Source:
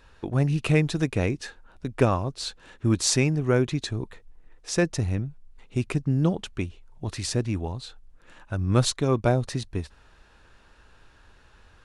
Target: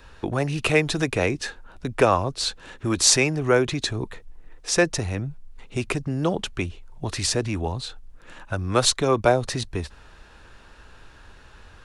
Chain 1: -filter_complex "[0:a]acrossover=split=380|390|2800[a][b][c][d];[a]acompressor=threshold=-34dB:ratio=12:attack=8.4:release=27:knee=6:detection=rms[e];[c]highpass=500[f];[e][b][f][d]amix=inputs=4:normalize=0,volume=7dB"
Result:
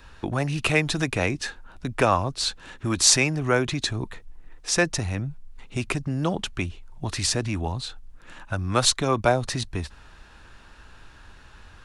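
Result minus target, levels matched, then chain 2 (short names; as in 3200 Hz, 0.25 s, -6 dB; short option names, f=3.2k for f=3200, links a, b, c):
500 Hz band -3.0 dB
-filter_complex "[0:a]acrossover=split=380|390|2800[a][b][c][d];[a]acompressor=threshold=-34dB:ratio=12:attack=8.4:release=27:knee=6:detection=rms[e];[e][b][c][d]amix=inputs=4:normalize=0,volume=7dB"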